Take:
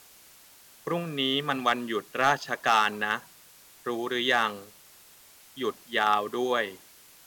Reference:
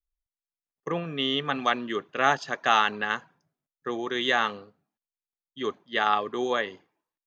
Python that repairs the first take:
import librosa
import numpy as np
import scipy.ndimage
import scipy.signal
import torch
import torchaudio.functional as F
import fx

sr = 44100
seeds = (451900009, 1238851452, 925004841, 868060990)

y = fx.fix_declip(x, sr, threshold_db=-12.5)
y = fx.noise_reduce(y, sr, print_start_s=5.04, print_end_s=5.54, reduce_db=30.0)